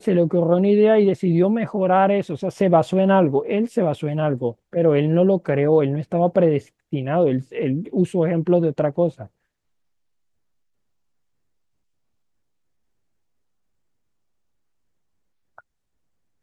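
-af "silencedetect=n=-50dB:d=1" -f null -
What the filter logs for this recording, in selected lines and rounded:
silence_start: 9.28
silence_end: 15.58 | silence_duration: 6.30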